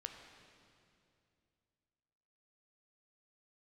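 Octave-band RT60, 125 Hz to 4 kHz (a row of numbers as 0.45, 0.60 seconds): 3.0, 2.9, 2.7, 2.4, 2.3, 2.3 seconds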